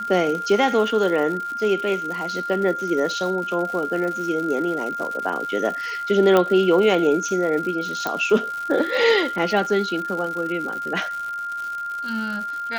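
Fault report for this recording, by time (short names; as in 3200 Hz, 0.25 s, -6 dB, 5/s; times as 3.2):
crackle 180/s -29 dBFS
tone 1400 Hz -26 dBFS
6.37 pop -6 dBFS
8.07 pop -10 dBFS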